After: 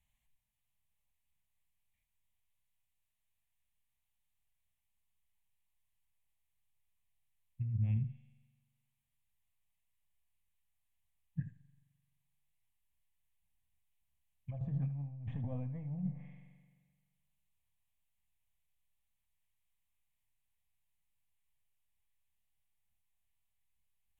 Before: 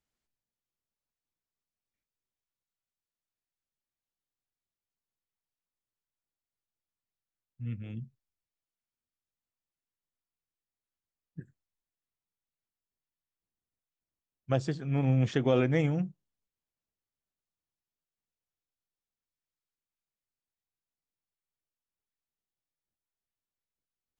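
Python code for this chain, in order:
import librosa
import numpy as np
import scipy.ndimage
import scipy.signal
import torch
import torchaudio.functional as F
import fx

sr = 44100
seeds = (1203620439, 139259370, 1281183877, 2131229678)

y = 10.0 ** (-16.5 / 20.0) * np.tanh(x / 10.0 ** (-16.5 / 20.0))
y = fx.peak_eq(y, sr, hz=430.0, db=-11.0, octaves=1.9)
y = fx.fixed_phaser(y, sr, hz=1400.0, stages=6)
y = fx.rev_spring(y, sr, rt60_s=1.5, pass_ms=(43,), chirp_ms=45, drr_db=19.5)
y = fx.env_lowpass_down(y, sr, base_hz=630.0, full_db=-37.5)
y = fx.over_compress(y, sr, threshold_db=-43.0, ratio=-1.0)
y = fx.low_shelf(y, sr, hz=140.0, db=6.0)
y = fx.room_early_taps(y, sr, ms=(28, 78), db=(-12.0, -12.0))
y = y * librosa.db_to_amplitude(1.5)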